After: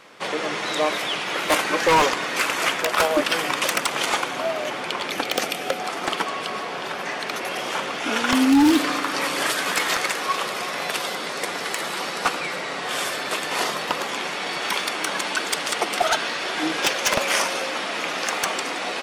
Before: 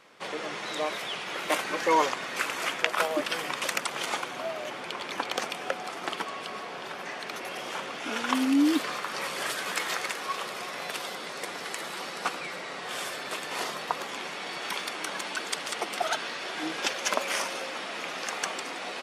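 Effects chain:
0:05.10–0:05.80: thirty-one-band graphic EQ 1,000 Hz −10 dB, 1,600 Hz −3 dB, 12,500 Hz +9 dB
feedback delay network reverb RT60 2.2 s, low-frequency decay 1.55×, high-frequency decay 0.95×, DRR 18.5 dB
wave folding −19 dBFS
level +8.5 dB

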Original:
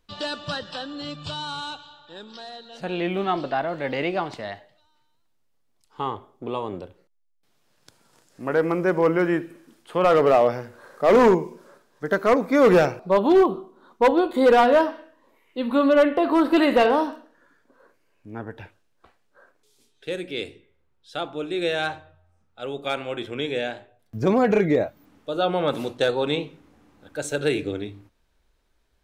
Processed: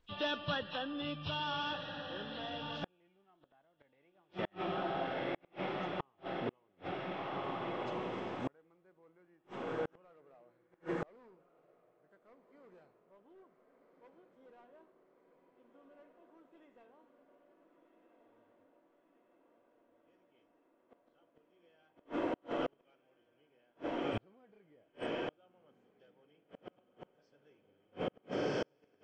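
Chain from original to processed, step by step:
hearing-aid frequency compression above 2,400 Hz 1.5 to 1
feedback delay with all-pass diffusion 1,457 ms, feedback 73%, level −6 dB
gate with flip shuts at −19 dBFS, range −40 dB
level −5.5 dB

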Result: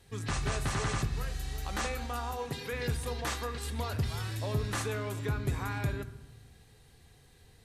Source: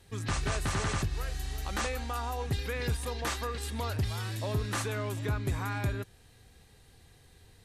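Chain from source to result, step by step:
0:02.33–0:02.73: high-pass filter 180 Hz
convolution reverb RT60 1.1 s, pre-delay 3 ms, DRR 9.5 dB
level −1.5 dB

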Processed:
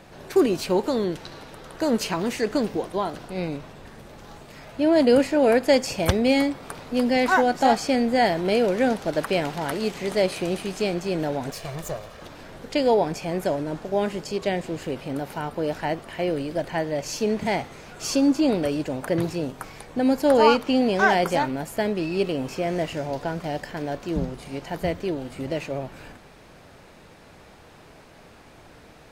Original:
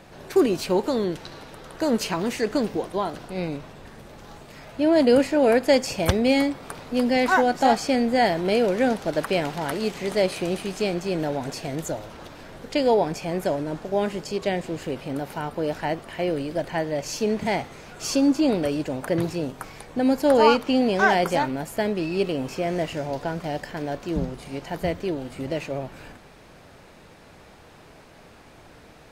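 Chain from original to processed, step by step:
0:11.51–0:12.22: lower of the sound and its delayed copy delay 1.7 ms

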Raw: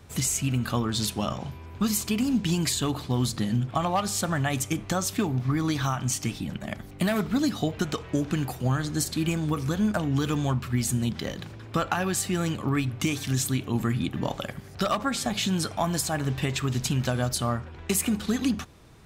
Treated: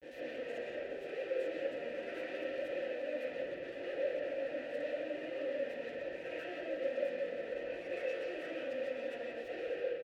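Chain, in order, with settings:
peak hold with a rise ahead of every peak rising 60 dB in 0.44 s
downward compressor 3 to 1, threshold −31 dBFS, peak gain reduction 9 dB
comparator with hysteresis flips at −33 dBFS
change of speed 1.9×
formant filter e
notch comb filter 210 Hz
repeating echo 174 ms, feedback 60%, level −11 dB
convolution reverb RT60 0.70 s, pre-delay 90 ms, DRR −7.5 dB
level −2.5 dB

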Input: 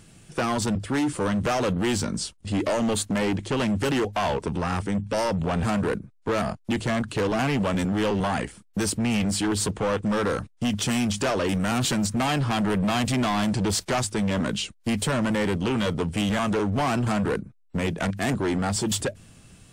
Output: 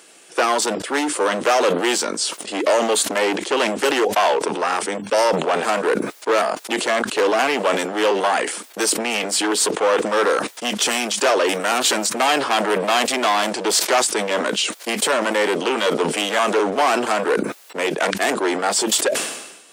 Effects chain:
high-pass filter 370 Hz 24 dB per octave
level that may fall only so fast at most 57 dB per second
level +8.5 dB

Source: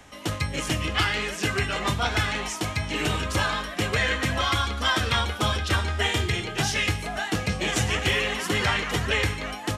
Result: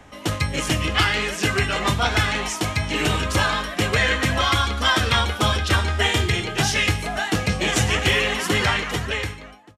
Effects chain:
fade-out on the ending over 1.24 s
one half of a high-frequency compander decoder only
level +4.5 dB

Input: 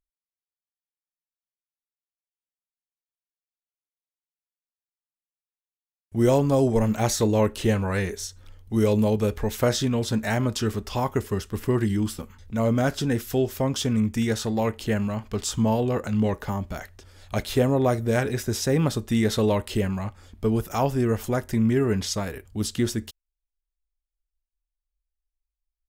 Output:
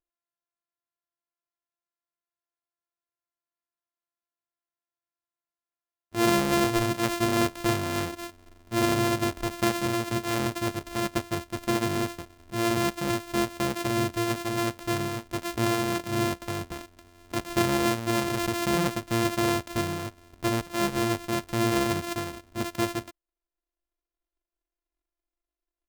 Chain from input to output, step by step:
samples sorted by size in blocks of 128 samples
low-shelf EQ 93 Hz −6.5 dB
0:18.26–0:18.68: background raised ahead of every attack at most 24 dB per second
level −3 dB

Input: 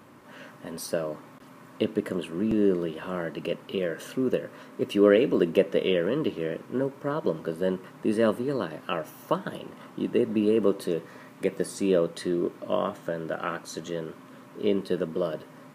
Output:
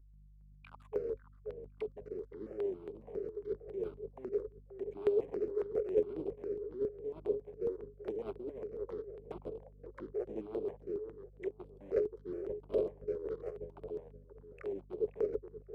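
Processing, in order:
spectral magnitudes quantised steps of 15 dB
bit reduction 5 bits
wrap-around overflow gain 16 dB
envelope filter 530–3,800 Hz, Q 20, down, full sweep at −31.5 dBFS
mains hum 50 Hz, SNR 22 dB
on a send: feedback echo with a low-pass in the loop 527 ms, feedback 30%, low-pass 1,400 Hz, level −10 dB
on the sum: formants moved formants −4 semitones
step-sequenced phaser 7.3 Hz 710–6,300 Hz
level +7 dB

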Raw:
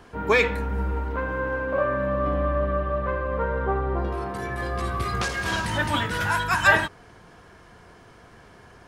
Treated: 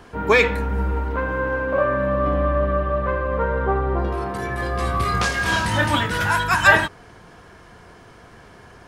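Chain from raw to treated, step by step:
0:04.77–0:05.95: double-tracking delay 27 ms −6 dB
level +4 dB

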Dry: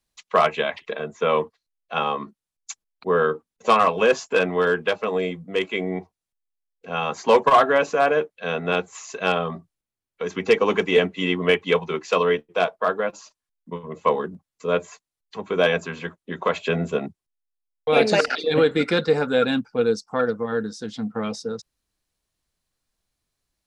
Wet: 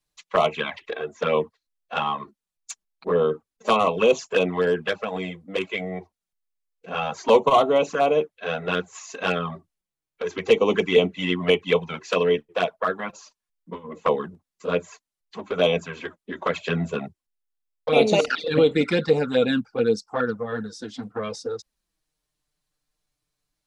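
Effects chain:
flanger swept by the level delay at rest 6.7 ms, full sweep at −15 dBFS
level +1.5 dB

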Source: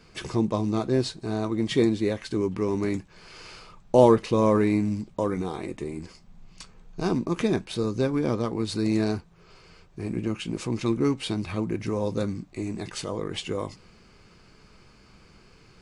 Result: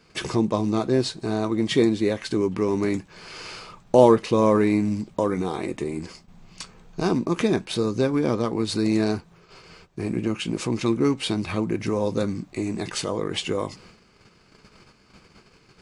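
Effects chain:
noise gate −52 dBFS, range −9 dB
low-shelf EQ 77 Hz −10.5 dB
in parallel at −1 dB: downward compressor, threshold −33 dBFS, peak gain reduction 20 dB
on the sum: level +1.5 dB

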